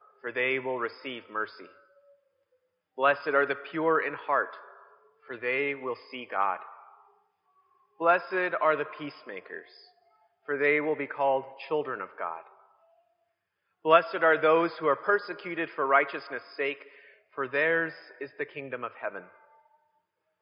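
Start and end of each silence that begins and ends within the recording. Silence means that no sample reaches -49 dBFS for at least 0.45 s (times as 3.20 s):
1.78–2.98 s
7.00–7.99 s
9.87–10.48 s
12.60–13.85 s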